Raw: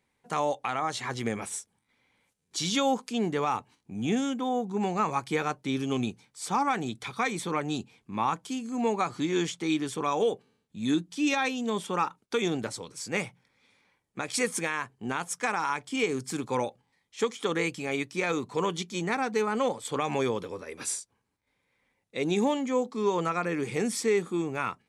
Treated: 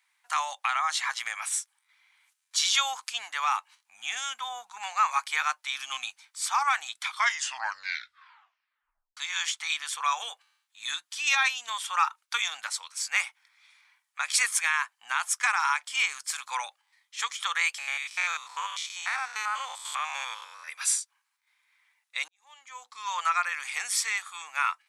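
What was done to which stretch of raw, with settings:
7.05 s: tape stop 2.12 s
17.78–20.68 s: spectrogram pixelated in time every 100 ms
22.28–23.13 s: fade in quadratic
whole clip: inverse Chebyshev high-pass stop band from 410 Hz, stop band 50 dB; trim +6.5 dB

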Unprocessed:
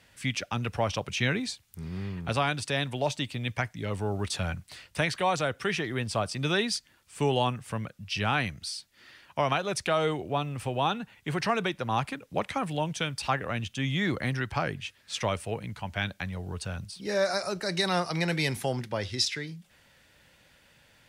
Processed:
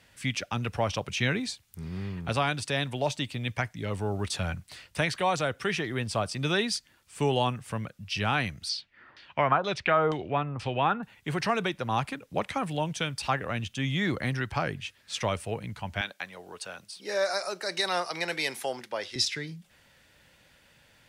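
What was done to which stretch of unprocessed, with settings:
8.69–11.03 s: LFO low-pass saw down 2.1 Hz 900–5200 Hz
16.01–19.16 s: high-pass 420 Hz

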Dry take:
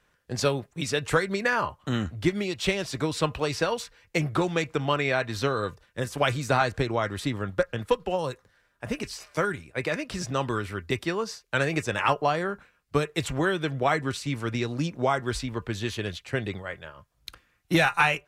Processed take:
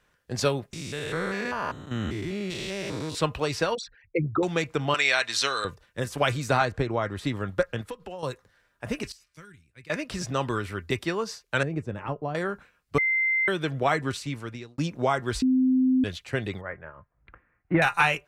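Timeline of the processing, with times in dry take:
0.73–3.15 s: spectrogram pixelated in time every 200 ms
3.75–4.43 s: resonances exaggerated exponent 3
4.94–5.65 s: frequency weighting ITU-R 468
6.65–7.25 s: treble shelf 2.5 kHz -8 dB
7.81–8.23 s: compression 2.5:1, threshold -39 dBFS
9.12–9.90 s: amplifier tone stack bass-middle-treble 6-0-2
11.63–12.35 s: FFT filter 230 Hz 0 dB, 2.2 kHz -18 dB, 5.9 kHz -23 dB
12.98–13.48 s: bleep 2.08 kHz -21 dBFS
14.12–14.78 s: fade out
15.42–16.04 s: bleep 258 Hz -18 dBFS
16.61–17.82 s: steep low-pass 2.1 kHz

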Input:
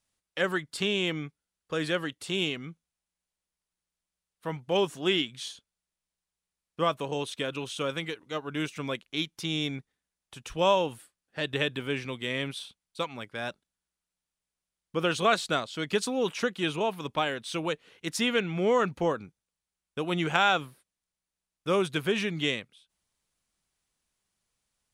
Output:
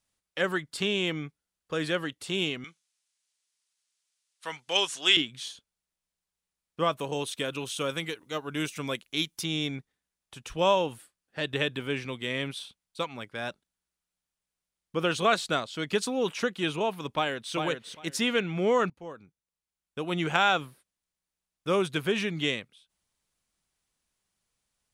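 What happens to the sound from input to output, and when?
2.64–5.17 s: frequency weighting ITU-R 468
6.97–9.43 s: treble shelf 10 kHz -> 5.9 kHz +12 dB
17.12–17.54 s: echo throw 400 ms, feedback 15%, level -5.5 dB
18.90–20.30 s: fade in, from -22 dB

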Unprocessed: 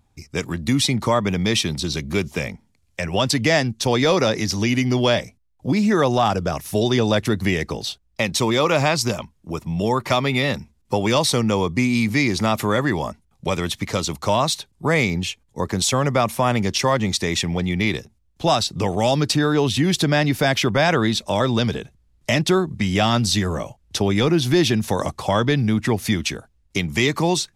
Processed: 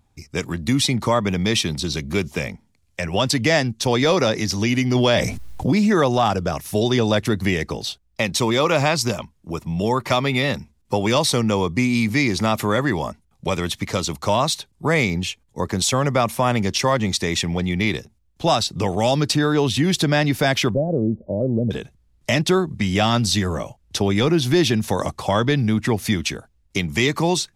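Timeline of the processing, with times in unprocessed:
4.95–6.04 s: level flattener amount 70%
20.74–21.71 s: elliptic low-pass 580 Hz, stop band 80 dB

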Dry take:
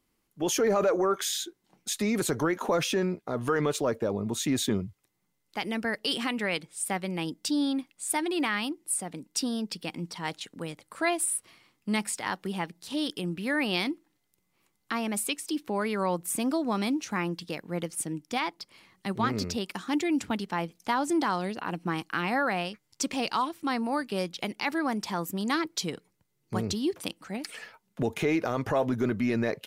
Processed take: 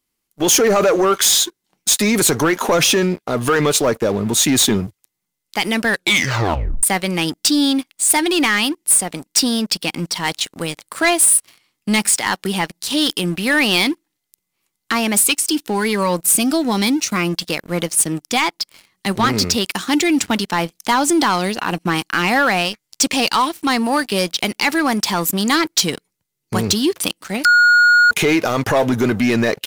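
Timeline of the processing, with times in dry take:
5.87 s: tape stop 0.96 s
15.24–17.36 s: Shepard-style phaser rising 1.1 Hz
27.45–28.11 s: bleep 1.44 kHz -18.5 dBFS
whole clip: treble shelf 2.2 kHz +10 dB; waveshaping leveller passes 3

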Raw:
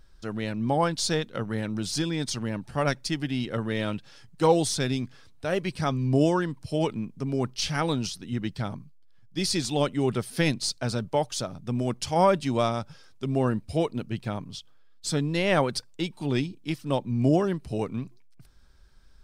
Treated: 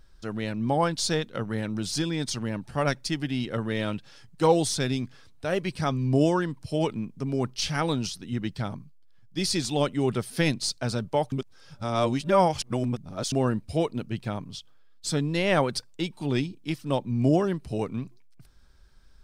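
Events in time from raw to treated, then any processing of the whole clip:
11.32–13.32 s: reverse

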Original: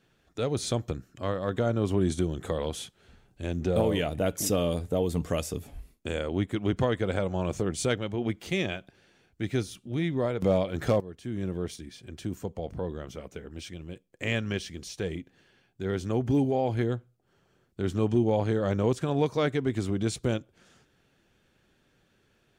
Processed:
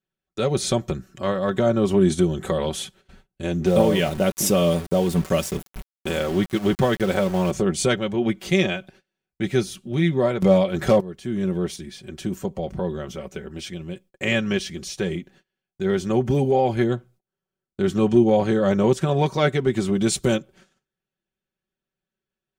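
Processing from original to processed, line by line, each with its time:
3.66–7.51 s: small samples zeroed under -38 dBFS
19.93–20.35 s: treble shelf 8.2 kHz -> 4.5 kHz +8.5 dB
whole clip: gate -56 dBFS, range -29 dB; comb 5.3 ms, depth 65%; trim +6 dB

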